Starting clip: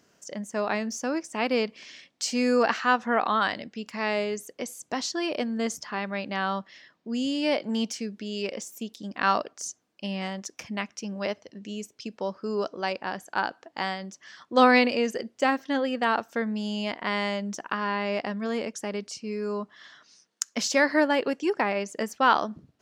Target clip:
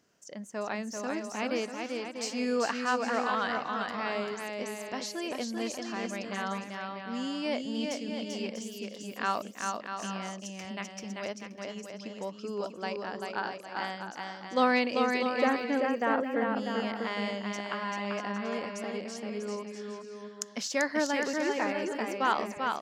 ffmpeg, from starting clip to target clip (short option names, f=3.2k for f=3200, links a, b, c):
-filter_complex "[0:a]asettb=1/sr,asplit=3[a][b][c];[a]atrim=end=15.314[d];[b]atrim=start=15.31:end=16.44,asetpts=PTS-STARTPTS,afade=t=in:d=0.004:c=qsin,afade=t=out:st=1.126:d=0.004:c=qsin,equalizer=f=250:t=o:w=1:g=3,equalizer=f=500:t=o:w=1:g=5,equalizer=f=2k:t=o:w=1:g=4,equalizer=f=4k:t=o:w=1:g=-11,equalizer=f=8k:t=o:w=1:g=-8[e];[c]atrim=start=16.436[f];[d][e]acrossfade=d=0.004:c1=hsin:c2=qsin[g];[g][f]acrossfade=d=0.004:c1=qsin:c2=hsin,aecho=1:1:390|643.5|808.3|915.4|985:0.631|0.398|0.251|0.158|0.1,volume=-7dB"